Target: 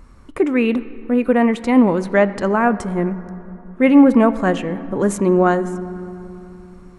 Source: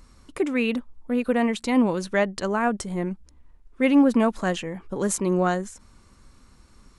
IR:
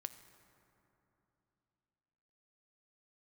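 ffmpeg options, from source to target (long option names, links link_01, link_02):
-filter_complex "[0:a]asplit=2[link_01][link_02];[1:a]atrim=start_sample=2205,lowpass=2500[link_03];[link_02][link_03]afir=irnorm=-1:irlink=0,volume=9dB[link_04];[link_01][link_04]amix=inputs=2:normalize=0,volume=-1.5dB"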